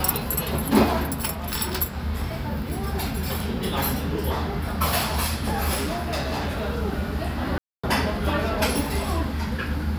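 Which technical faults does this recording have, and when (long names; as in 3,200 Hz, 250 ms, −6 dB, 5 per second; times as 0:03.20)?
0:05.74–0:06.70: clipping −22.5 dBFS
0:07.58–0:07.83: drop-out 255 ms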